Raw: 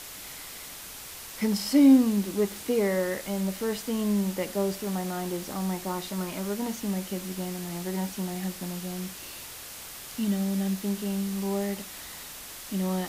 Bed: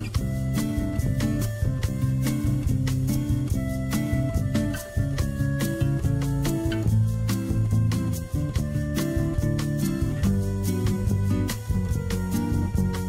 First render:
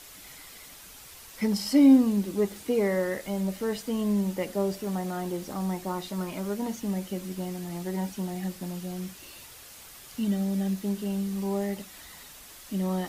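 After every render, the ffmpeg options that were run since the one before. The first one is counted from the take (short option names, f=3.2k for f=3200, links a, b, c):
-af "afftdn=nr=7:nf=-42"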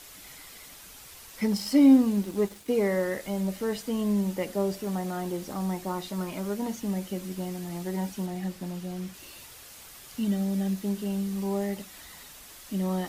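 -filter_complex "[0:a]asettb=1/sr,asplit=3[a][b][c];[a]atrim=end=1.554[d];[b]atrim=start=1.55:end=2.69,asetpts=PTS-STARTPTS,afade=t=in:d=0.004:c=qsin,afade=t=out:st=1.136:d=0.004:c=qsin,aeval=exprs='sgn(val(0))*max(abs(val(0))-0.00398,0)':c=same[e];[c]atrim=start=2.686[f];[d][e]acrossfade=d=0.004:c1=hsin:c2=qsin[g];[g][f]acrossfade=d=0.004:c1=qsin:c2=hsin,asettb=1/sr,asplit=3[h][i][j];[h]atrim=end=8.264[k];[i]atrim=start=8.26:end=9.14,asetpts=PTS-STARTPTS,afade=t=in:d=0.004:c=qsin,afade=t=out:st=0.876:d=0.004:c=qsin,highshelf=f=5.7k:g=-5.5[l];[j]atrim=start=9.136[m];[k][l]acrossfade=d=0.004:c1=hsin:c2=qsin[n];[n][m]acrossfade=d=0.004:c1=qsin:c2=hsin"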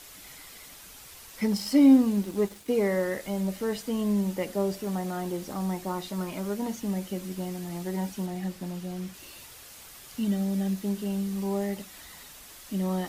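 -af anull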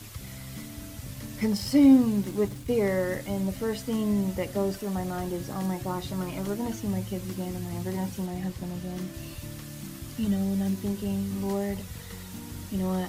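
-filter_complex "[1:a]volume=-15.5dB[a];[0:a][a]amix=inputs=2:normalize=0"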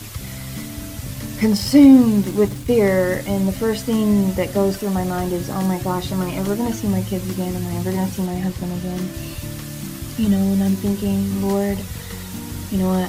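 -af "volume=9.5dB,alimiter=limit=-2dB:level=0:latency=1"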